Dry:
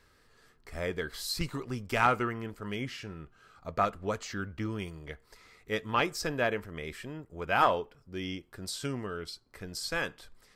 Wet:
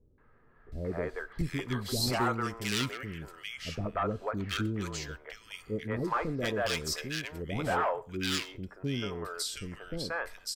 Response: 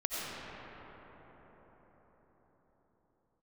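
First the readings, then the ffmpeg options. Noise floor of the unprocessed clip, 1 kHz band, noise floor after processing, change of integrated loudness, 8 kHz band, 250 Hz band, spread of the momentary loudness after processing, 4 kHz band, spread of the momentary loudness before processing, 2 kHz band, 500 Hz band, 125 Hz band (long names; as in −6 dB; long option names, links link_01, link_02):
−65 dBFS, −3.5 dB, −60 dBFS, −0.5 dB, +4.0 dB, +2.0 dB, 11 LU, +3.5 dB, 17 LU, −1.5 dB, −1.0 dB, +3.0 dB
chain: -filter_complex "[0:a]aeval=exprs='0.075*(abs(mod(val(0)/0.075+3,4)-2)-1)':channel_layout=same,acrossover=split=480|1800[link_01][link_02][link_03];[link_02]adelay=180[link_04];[link_03]adelay=720[link_05];[link_01][link_04][link_05]amix=inputs=3:normalize=0,asplit=2[link_06][link_07];[1:a]atrim=start_sample=2205,atrim=end_sample=6174[link_08];[link_07][link_08]afir=irnorm=-1:irlink=0,volume=-23dB[link_09];[link_06][link_09]amix=inputs=2:normalize=0,volume=2.5dB"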